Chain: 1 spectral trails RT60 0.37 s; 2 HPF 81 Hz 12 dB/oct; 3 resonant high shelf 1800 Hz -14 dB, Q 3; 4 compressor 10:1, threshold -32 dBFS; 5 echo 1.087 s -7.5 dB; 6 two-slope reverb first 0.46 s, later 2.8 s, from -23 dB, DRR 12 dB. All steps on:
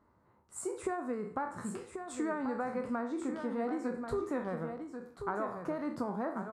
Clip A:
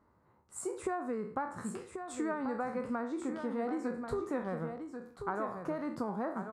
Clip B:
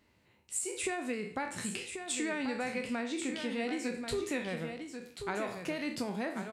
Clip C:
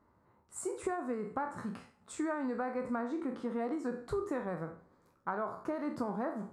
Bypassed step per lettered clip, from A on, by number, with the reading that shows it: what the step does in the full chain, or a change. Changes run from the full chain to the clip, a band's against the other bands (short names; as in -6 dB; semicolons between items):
6, echo-to-direct -6.0 dB to -7.5 dB; 3, 4 kHz band +17.5 dB; 5, echo-to-direct -6.0 dB to -12.0 dB